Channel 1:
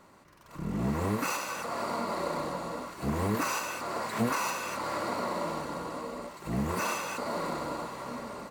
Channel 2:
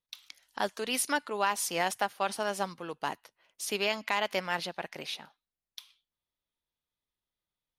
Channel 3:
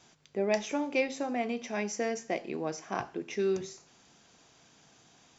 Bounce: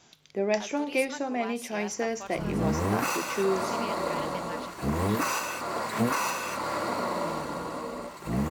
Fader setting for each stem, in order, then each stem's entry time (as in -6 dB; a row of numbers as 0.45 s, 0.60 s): +2.5 dB, -11.5 dB, +2.0 dB; 1.80 s, 0.00 s, 0.00 s